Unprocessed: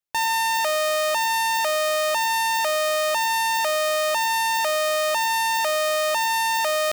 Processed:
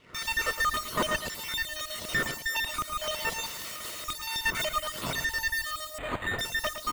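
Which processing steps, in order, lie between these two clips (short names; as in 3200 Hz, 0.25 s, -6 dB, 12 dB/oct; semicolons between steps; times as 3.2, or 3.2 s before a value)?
random spectral dropouts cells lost 74%; wind noise 180 Hz -27 dBFS; bell 3300 Hz -3 dB 0.32 oct; 3.46–4.05 wrapped overs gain 29 dB; LFO high-pass saw down 3.9 Hz 330–1600 Hz; full-wave rectifier; notch comb 810 Hz; echo 0.112 s -9 dB; 5.98–6.39 decimation joined by straight lines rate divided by 8×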